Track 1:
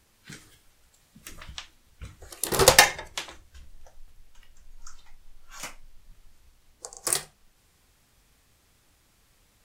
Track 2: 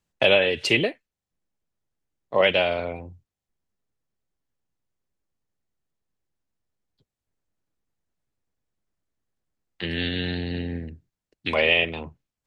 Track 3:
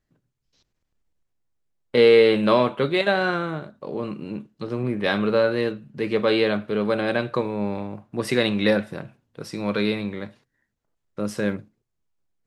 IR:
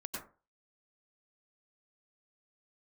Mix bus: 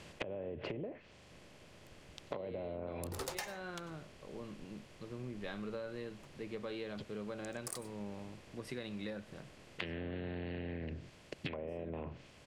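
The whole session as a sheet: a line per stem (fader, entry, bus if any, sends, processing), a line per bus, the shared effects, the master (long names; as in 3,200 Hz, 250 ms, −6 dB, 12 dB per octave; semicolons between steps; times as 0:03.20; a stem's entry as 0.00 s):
−20.0 dB, 0.60 s, no bus, send −10.5 dB, adaptive Wiener filter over 25 samples; leveller curve on the samples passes 2
0.0 dB, 0.00 s, bus A, no send, compressor on every frequency bin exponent 0.6; treble cut that deepens with the level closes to 580 Hz, closed at −16 dBFS
−19.0 dB, 0.40 s, bus A, no send, no processing
bus A: 0.0 dB, low-shelf EQ 180 Hz +5 dB; downward compressor, threshold −28 dBFS, peak gain reduction 13.5 dB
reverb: on, RT60 0.35 s, pre-delay 87 ms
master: downward compressor 10 to 1, threshold −38 dBFS, peak gain reduction 14.5 dB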